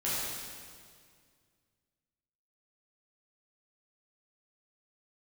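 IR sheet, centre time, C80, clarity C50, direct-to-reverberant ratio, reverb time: 0.137 s, -1.5 dB, -3.5 dB, -10.0 dB, 2.0 s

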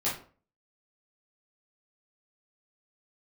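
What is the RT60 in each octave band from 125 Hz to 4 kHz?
0.45, 0.45, 0.45, 0.40, 0.35, 0.30 s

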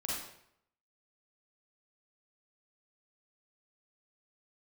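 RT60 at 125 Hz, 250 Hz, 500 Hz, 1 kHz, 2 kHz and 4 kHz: 0.80, 0.70, 0.75, 0.70, 0.65, 0.60 s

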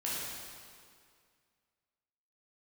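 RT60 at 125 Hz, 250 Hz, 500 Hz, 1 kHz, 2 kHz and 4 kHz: 2.1, 2.2, 2.2, 2.1, 2.0, 1.8 s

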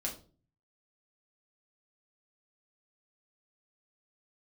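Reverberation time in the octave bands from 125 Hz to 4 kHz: 0.80, 0.55, 0.45, 0.35, 0.25, 0.30 s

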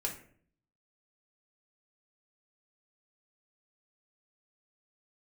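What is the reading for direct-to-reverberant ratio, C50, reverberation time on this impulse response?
0.0 dB, 8.5 dB, 0.55 s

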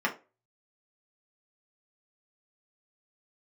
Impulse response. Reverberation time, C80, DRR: 0.30 s, 21.0 dB, -3.0 dB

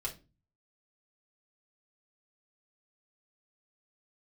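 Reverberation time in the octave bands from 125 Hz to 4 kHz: 0.65, 0.50, 0.35, 0.25, 0.25, 0.25 s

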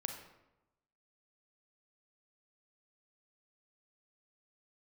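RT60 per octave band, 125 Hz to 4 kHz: 1.1, 1.0, 1.0, 0.95, 0.75, 0.60 s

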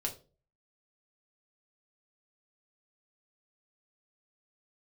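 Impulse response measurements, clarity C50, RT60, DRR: 12.5 dB, 0.35 s, 0.0 dB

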